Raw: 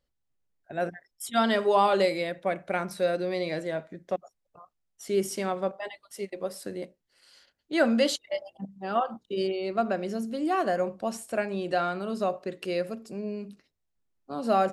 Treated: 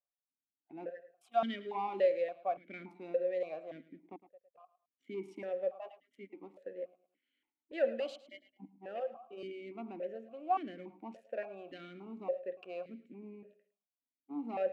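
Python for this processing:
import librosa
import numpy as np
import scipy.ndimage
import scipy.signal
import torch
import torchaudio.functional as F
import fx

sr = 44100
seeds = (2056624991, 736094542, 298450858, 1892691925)

p1 = fx.wiener(x, sr, points=9)
p2 = fx.leveller(p1, sr, passes=1)
p3 = p2 + fx.echo_feedback(p2, sr, ms=108, feedback_pct=32, wet_db=-16.0, dry=0)
p4 = fx.vowel_held(p3, sr, hz=3.5)
y = F.gain(torch.from_numpy(p4), -3.5).numpy()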